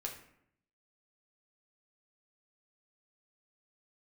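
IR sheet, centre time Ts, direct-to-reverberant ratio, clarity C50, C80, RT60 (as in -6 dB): 22 ms, 0.5 dB, 7.5 dB, 11.0 dB, 0.70 s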